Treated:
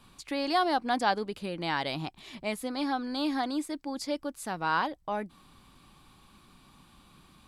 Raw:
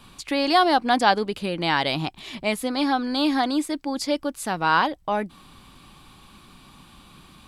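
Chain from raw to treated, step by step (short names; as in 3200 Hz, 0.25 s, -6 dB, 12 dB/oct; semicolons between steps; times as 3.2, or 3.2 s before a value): bell 3000 Hz -2.5 dB; gain -8 dB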